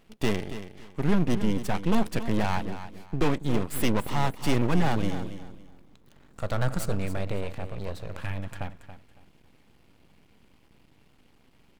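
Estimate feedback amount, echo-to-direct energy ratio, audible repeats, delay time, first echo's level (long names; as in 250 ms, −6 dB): 24%, −11.5 dB, 2, 279 ms, −12.0 dB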